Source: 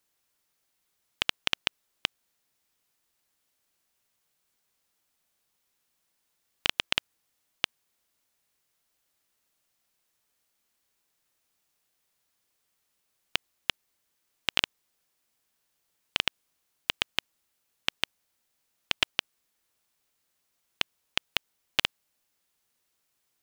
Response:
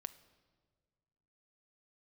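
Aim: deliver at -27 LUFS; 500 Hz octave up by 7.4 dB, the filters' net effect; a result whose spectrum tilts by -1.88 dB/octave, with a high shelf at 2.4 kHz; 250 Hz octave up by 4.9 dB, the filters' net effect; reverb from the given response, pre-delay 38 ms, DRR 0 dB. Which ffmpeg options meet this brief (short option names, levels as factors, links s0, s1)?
-filter_complex "[0:a]equalizer=f=250:t=o:g=3.5,equalizer=f=500:t=o:g=8,highshelf=f=2400:g=7.5,asplit=2[s0][s1];[1:a]atrim=start_sample=2205,adelay=38[s2];[s1][s2]afir=irnorm=-1:irlink=0,volume=1.58[s3];[s0][s3]amix=inputs=2:normalize=0,volume=0.708"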